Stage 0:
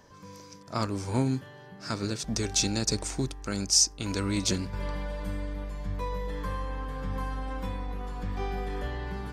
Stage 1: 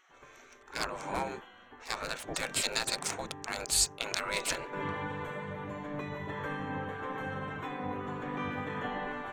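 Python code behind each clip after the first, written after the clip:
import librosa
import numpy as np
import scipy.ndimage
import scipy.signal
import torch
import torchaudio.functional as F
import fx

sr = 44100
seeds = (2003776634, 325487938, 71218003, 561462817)

y = fx.wiener(x, sr, points=9)
y = fx.spec_gate(y, sr, threshold_db=-15, keep='weak')
y = y * librosa.db_to_amplitude(7.0)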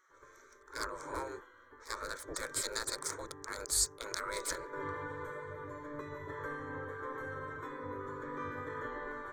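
y = fx.fixed_phaser(x, sr, hz=740.0, stages=6)
y = y * librosa.db_to_amplitude(-1.5)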